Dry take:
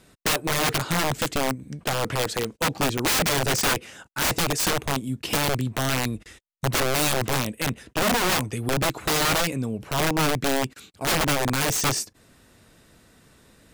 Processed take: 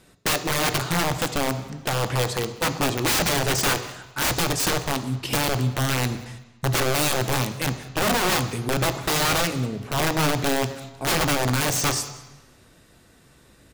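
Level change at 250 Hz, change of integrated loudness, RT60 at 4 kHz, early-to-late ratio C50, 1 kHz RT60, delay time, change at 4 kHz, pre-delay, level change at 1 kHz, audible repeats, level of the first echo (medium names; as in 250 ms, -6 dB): +0.5 dB, +0.5 dB, 1.1 s, 11.5 dB, 1.1 s, 191 ms, +0.5 dB, 3 ms, +1.0 dB, 1, -23.5 dB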